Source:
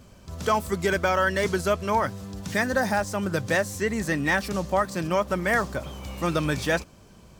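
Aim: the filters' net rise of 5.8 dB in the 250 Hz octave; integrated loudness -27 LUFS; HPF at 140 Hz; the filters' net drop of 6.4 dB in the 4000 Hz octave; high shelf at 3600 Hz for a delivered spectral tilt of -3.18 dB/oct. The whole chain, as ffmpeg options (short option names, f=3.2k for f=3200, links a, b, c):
-af "highpass=140,equalizer=f=250:t=o:g=9,highshelf=f=3.6k:g=-4.5,equalizer=f=4k:t=o:g=-5.5,volume=-3dB"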